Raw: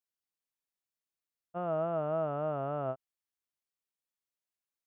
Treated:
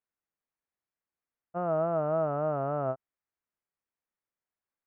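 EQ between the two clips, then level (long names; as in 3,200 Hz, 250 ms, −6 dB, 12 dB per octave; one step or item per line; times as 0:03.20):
low-pass filter 2,100 Hz 24 dB per octave
+4.0 dB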